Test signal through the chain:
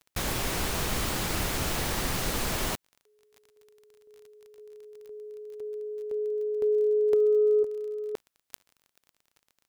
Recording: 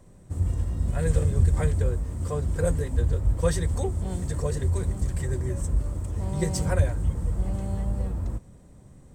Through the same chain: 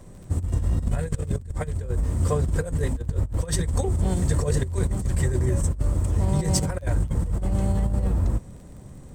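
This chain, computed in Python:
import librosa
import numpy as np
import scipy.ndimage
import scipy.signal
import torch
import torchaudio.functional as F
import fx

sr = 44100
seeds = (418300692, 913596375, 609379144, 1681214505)

y = fx.over_compress(x, sr, threshold_db=-27.0, ratio=-0.5)
y = fx.dmg_crackle(y, sr, seeds[0], per_s=31.0, level_db=-46.0)
y = y * librosa.db_to_amplitude(4.5)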